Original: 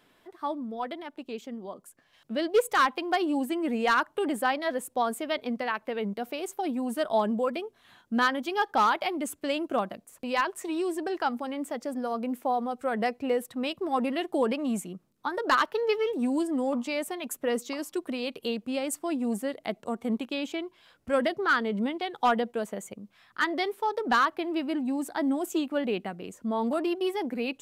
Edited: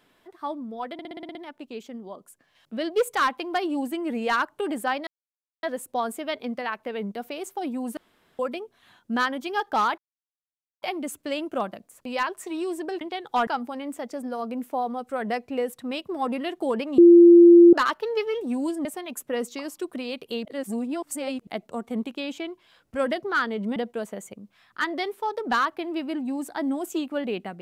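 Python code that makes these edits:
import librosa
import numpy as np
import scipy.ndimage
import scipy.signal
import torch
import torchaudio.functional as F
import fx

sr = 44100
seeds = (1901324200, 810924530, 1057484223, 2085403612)

y = fx.edit(x, sr, fx.stutter(start_s=0.93, slice_s=0.06, count=8),
    fx.insert_silence(at_s=4.65, length_s=0.56),
    fx.room_tone_fill(start_s=6.99, length_s=0.42),
    fx.insert_silence(at_s=9.0, length_s=0.84),
    fx.bleep(start_s=14.7, length_s=0.75, hz=344.0, db=-7.5),
    fx.cut(start_s=16.57, length_s=0.42),
    fx.reverse_span(start_s=18.59, length_s=1.02),
    fx.move(start_s=21.9, length_s=0.46, to_s=11.19), tone=tone)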